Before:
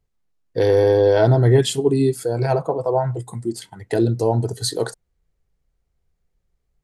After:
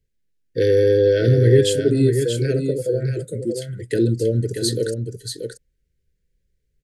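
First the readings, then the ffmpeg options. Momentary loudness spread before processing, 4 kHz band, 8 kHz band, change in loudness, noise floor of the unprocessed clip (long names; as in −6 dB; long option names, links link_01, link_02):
14 LU, +1.0 dB, +1.0 dB, 0.0 dB, −73 dBFS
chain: -filter_complex "[0:a]asuperstop=centerf=910:order=12:qfactor=0.97,asplit=2[link_01][link_02];[link_02]aecho=0:1:633:0.473[link_03];[link_01][link_03]amix=inputs=2:normalize=0"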